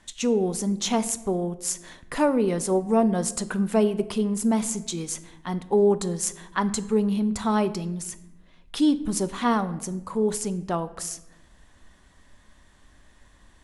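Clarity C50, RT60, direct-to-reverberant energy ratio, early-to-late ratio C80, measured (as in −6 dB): 16.0 dB, 0.95 s, 12.0 dB, 17.5 dB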